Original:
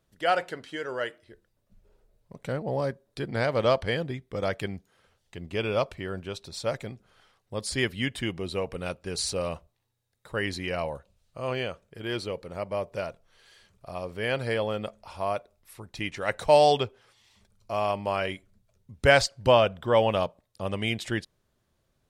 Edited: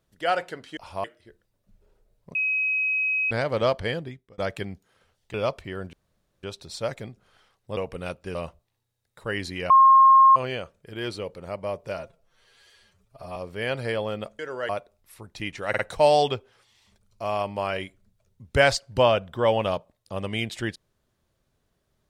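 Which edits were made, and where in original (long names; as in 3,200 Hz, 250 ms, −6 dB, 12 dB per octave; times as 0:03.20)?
0:00.77–0:01.07: swap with 0:15.01–0:15.28
0:02.38–0:03.34: beep over 2,540 Hz −21.5 dBFS
0:03.96–0:04.41: fade out
0:05.37–0:05.67: remove
0:06.26: splice in room tone 0.50 s
0:07.60–0:08.57: remove
0:09.15–0:09.43: remove
0:10.78–0:11.44: beep over 1,070 Hz −10.5 dBFS
0:13.06–0:13.98: time-stretch 1.5×
0:16.28: stutter 0.05 s, 3 plays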